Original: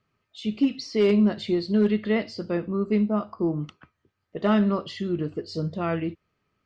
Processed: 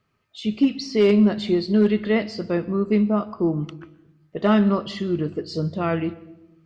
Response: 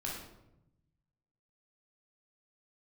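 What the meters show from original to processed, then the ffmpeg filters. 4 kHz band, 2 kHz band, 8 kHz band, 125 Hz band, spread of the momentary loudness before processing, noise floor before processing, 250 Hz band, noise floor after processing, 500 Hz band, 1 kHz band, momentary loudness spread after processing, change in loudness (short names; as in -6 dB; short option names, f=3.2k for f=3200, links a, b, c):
+3.5 dB, +3.5 dB, n/a, +3.5 dB, 10 LU, -77 dBFS, +3.5 dB, -68 dBFS, +3.5 dB, +3.5 dB, 10 LU, +3.5 dB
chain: -filter_complex "[0:a]asplit=2[a][b];[1:a]atrim=start_sample=2205,adelay=125[c];[b][c]afir=irnorm=-1:irlink=0,volume=-21.5dB[d];[a][d]amix=inputs=2:normalize=0,volume=3.5dB"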